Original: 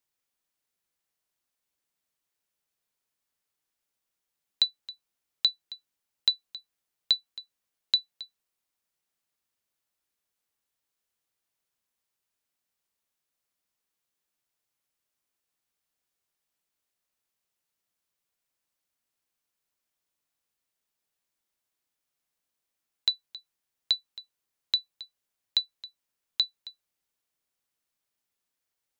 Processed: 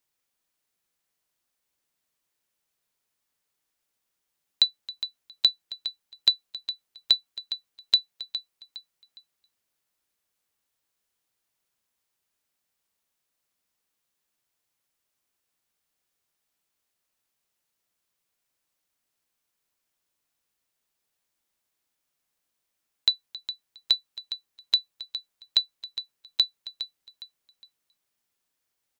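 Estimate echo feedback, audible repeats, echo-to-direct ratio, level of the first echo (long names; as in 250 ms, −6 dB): 33%, 3, −11.5 dB, −12.0 dB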